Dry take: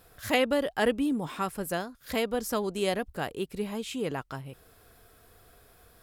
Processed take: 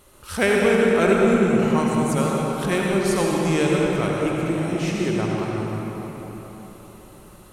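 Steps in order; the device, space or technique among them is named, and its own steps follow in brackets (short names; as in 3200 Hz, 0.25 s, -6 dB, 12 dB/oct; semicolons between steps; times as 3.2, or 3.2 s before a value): slowed and reverbed (varispeed -20%; reverb RT60 4.3 s, pre-delay 67 ms, DRR -3 dB); gain +4.5 dB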